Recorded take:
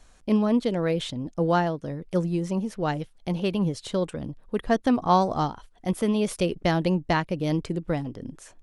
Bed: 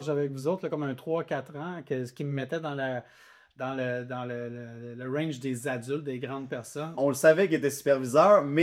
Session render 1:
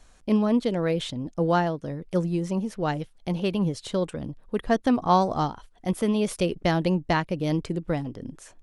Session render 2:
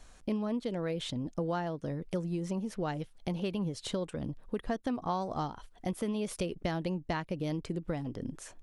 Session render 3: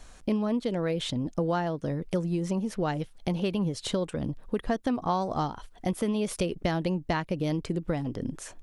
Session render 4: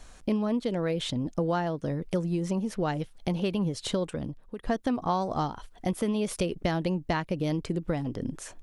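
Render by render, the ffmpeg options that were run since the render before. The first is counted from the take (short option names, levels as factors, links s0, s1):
-af anull
-af "acompressor=threshold=0.0251:ratio=4"
-af "volume=1.88"
-filter_complex "[0:a]asplit=2[s0][s1];[s0]atrim=end=4.63,asetpts=PTS-STARTPTS,afade=t=out:st=4.11:d=0.52:c=qua:silence=0.316228[s2];[s1]atrim=start=4.63,asetpts=PTS-STARTPTS,afade=t=in:d=0.004:c=hsin:silence=0.316228[s3];[s2][s3]concat=n=2:v=0:a=1"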